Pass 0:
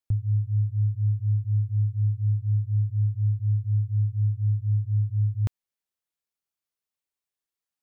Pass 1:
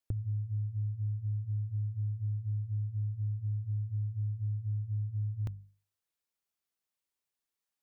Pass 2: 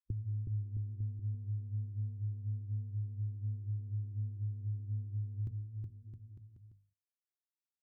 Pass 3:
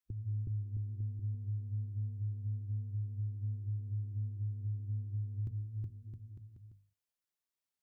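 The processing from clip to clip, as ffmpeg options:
-af "bandreject=f=50:t=h:w=6,bandreject=f=100:t=h:w=6,bandreject=f=150:t=h:w=6,bandreject=f=200:t=h:w=6,acompressor=threshold=-32dB:ratio=6"
-af "afwtdn=0.00891,aecho=1:1:370|666|902.8|1092|1244:0.631|0.398|0.251|0.158|0.1,volume=-3.5dB"
-af "alimiter=level_in=10dB:limit=-24dB:level=0:latency=1:release=234,volume=-10dB,volume=2.5dB"

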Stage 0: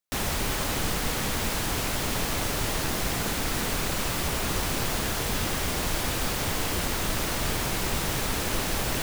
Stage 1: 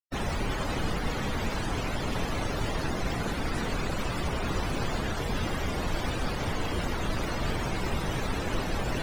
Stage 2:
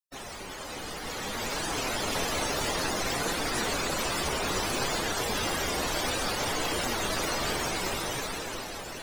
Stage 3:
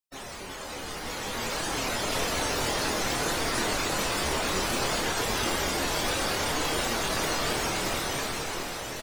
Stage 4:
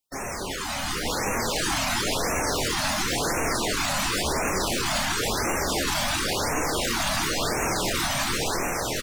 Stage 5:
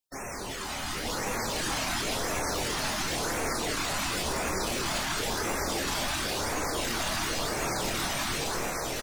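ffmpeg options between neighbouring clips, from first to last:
-af "afftdn=nr=33:nf=-33"
-af "flanger=delay=5.6:depth=9.4:regen=70:speed=0.6:shape=triangular,bass=f=250:g=-11,treble=f=4k:g=9,dynaudnorm=f=300:g=9:m=11dB,volume=-3.5dB"
-filter_complex "[0:a]asplit=2[a][b];[b]adelay=26,volume=-6.5dB[c];[a][c]amix=inputs=2:normalize=0,asplit=2[d][e];[e]aecho=0:1:733:0.447[f];[d][f]amix=inputs=2:normalize=0"
-af "alimiter=level_in=0.5dB:limit=-24dB:level=0:latency=1:release=20,volume=-0.5dB,afftfilt=real='re*(1-between(b*sr/1024,370*pow(4000/370,0.5+0.5*sin(2*PI*0.95*pts/sr))/1.41,370*pow(4000/370,0.5+0.5*sin(2*PI*0.95*pts/sr))*1.41))':imag='im*(1-between(b*sr/1024,370*pow(4000/370,0.5+0.5*sin(2*PI*0.95*pts/sr))/1.41,370*pow(4000/370,0.5+0.5*sin(2*PI*0.95*pts/sr))*1.41))':win_size=1024:overlap=0.75,volume=8.5dB"
-af "aecho=1:1:216:0.447,volume=-5.5dB"

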